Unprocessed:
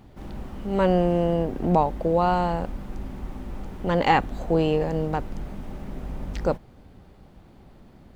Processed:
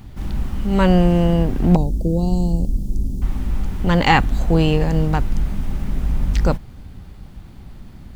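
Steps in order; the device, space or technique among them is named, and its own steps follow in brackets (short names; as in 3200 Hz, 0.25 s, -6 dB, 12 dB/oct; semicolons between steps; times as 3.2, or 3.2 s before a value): smiley-face EQ (low shelf 130 Hz +7 dB; bell 520 Hz -8.5 dB 1.7 oct; high shelf 5200 Hz +4.5 dB); 1.76–3.22 Chebyshev band-stop 380–6300 Hz, order 2; gain +8.5 dB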